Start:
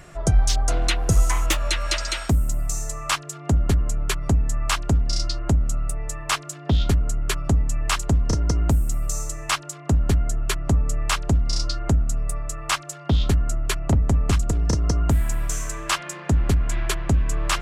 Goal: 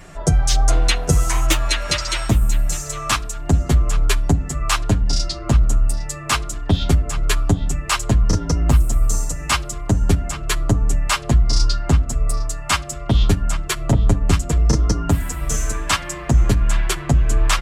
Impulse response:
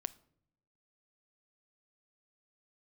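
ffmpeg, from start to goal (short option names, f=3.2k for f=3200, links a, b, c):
-filter_complex "[0:a]asplit=2[a][b];[b]adelay=807,lowpass=f=3.8k:p=1,volume=-13dB,asplit=2[c][d];[d]adelay=807,lowpass=f=3.8k:p=1,volume=0.27,asplit=2[e][f];[f]adelay=807,lowpass=f=3.8k:p=1,volume=0.27[g];[a][c][e][g]amix=inputs=4:normalize=0,asplit=2[h][i];[1:a]atrim=start_sample=2205[j];[i][j]afir=irnorm=-1:irlink=0,volume=3.5dB[k];[h][k]amix=inputs=2:normalize=0,asplit=2[l][m];[m]adelay=7.4,afreqshift=-1.2[n];[l][n]amix=inputs=2:normalize=1"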